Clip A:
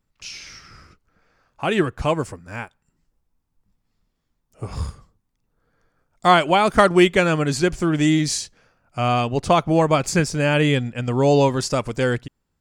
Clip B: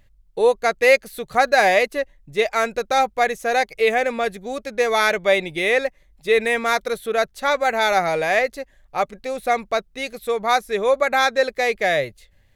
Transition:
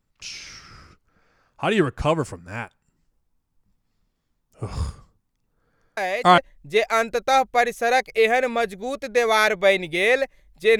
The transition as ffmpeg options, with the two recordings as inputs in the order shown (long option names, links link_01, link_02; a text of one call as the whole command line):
ffmpeg -i cue0.wav -i cue1.wav -filter_complex "[1:a]asplit=2[link_01][link_02];[0:a]apad=whole_dur=10.79,atrim=end=10.79,atrim=end=6.382[link_03];[link_02]atrim=start=2.008:end=6.42[link_04];[link_01]atrim=start=1.6:end=2.01,asetpts=PTS-STARTPTS,volume=-9dB,afade=type=in:duration=0.004:curve=hsin,afade=type=out:start_time=0.406:duration=0.004:curve=hsin,adelay=5970[link_05];[link_03][link_04]acrossfade=duration=0.004:curve1=hsin:curve2=hsin[link_06];[link_06][link_05]amix=inputs=2:normalize=0" out.wav